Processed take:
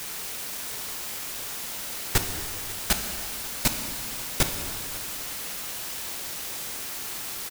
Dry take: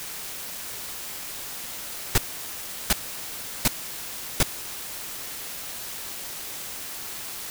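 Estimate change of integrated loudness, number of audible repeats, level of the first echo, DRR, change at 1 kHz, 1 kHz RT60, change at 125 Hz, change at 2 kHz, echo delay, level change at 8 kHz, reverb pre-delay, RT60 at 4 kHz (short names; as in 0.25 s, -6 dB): +1.0 dB, 1, -20.5 dB, 5.0 dB, +1.0 dB, 2.1 s, +1.0 dB, +1.0 dB, 0.543 s, +1.0 dB, 6 ms, 2.0 s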